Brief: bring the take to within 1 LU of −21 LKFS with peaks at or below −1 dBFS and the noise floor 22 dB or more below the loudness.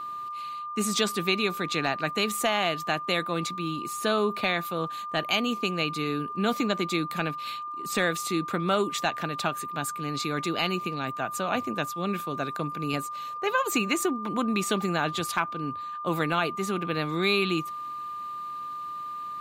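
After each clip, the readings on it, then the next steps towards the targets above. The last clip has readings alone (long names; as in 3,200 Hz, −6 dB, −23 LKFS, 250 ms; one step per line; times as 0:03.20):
crackle rate 22 per second; interfering tone 1,200 Hz; level of the tone −33 dBFS; integrated loudness −28.5 LKFS; sample peak −11.0 dBFS; target loudness −21.0 LKFS
→ click removal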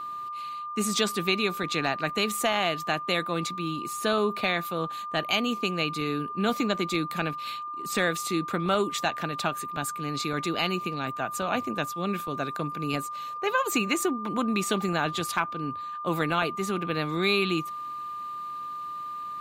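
crackle rate 0 per second; interfering tone 1,200 Hz; level of the tone −33 dBFS
→ notch filter 1,200 Hz, Q 30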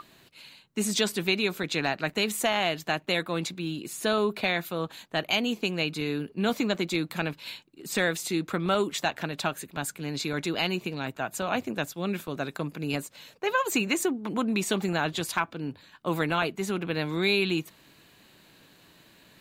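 interfering tone none found; integrated loudness −28.5 LKFS; sample peak −11.5 dBFS; target loudness −21.0 LKFS
→ level +7.5 dB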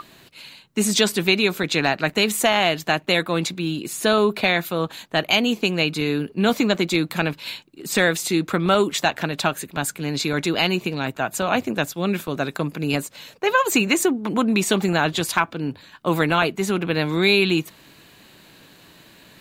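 integrated loudness −21.0 LKFS; sample peak −4.0 dBFS; background noise floor −51 dBFS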